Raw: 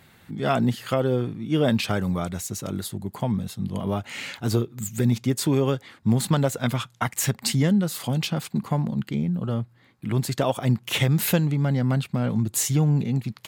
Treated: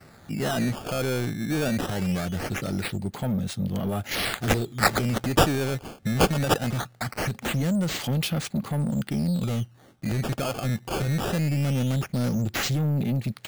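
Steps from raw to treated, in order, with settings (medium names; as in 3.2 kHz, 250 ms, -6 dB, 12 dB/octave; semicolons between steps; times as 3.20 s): peak limiter -18 dBFS, peak gain reduction 9 dB; saturation -24.5 dBFS, distortion -13 dB; 4.11–6.54 s: resonant high shelf 3.5 kHz +11 dB, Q 1.5; decimation with a swept rate 13×, swing 160% 0.21 Hz; gate with hold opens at -51 dBFS; peaking EQ 1 kHz -9 dB 0.2 oct; trim +4 dB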